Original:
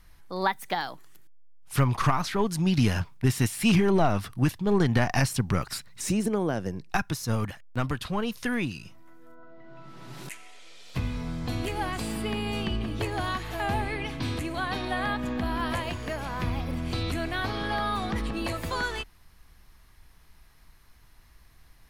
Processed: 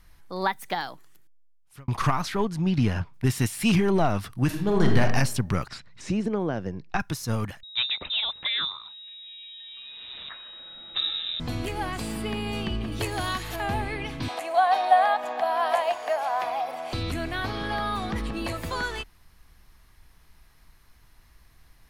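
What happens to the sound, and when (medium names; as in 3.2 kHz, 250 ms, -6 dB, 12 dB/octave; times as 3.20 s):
0.80–1.88 s: fade out
2.45–3.14 s: low-pass 2.2 kHz 6 dB/octave
4.45–5.01 s: reverb throw, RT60 0.8 s, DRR 2 dB
5.68–7.00 s: distance through air 130 m
7.63–11.40 s: frequency inversion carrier 3.8 kHz
12.92–13.56 s: treble shelf 3.8 kHz +9.5 dB
14.28–16.93 s: resonant high-pass 720 Hz, resonance Q 7.4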